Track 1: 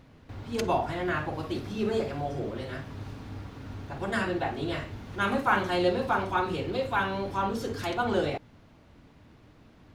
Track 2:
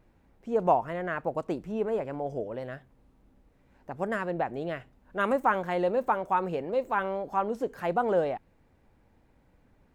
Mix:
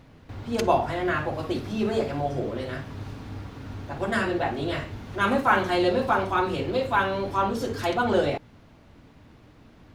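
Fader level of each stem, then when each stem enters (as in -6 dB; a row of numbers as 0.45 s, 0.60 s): +3.0 dB, -2.0 dB; 0.00 s, 0.00 s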